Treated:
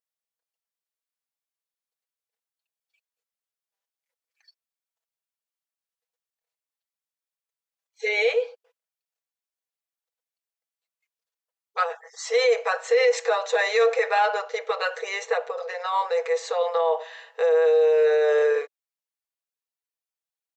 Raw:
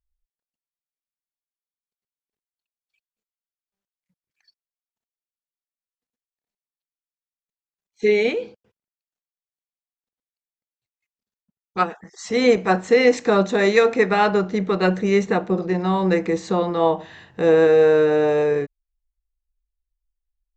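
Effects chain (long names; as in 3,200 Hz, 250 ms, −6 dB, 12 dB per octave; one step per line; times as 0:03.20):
comb filter 6.1 ms, depth 63%
brickwall limiter −12 dBFS, peak gain reduction 11 dB
linear-phase brick-wall high-pass 420 Hz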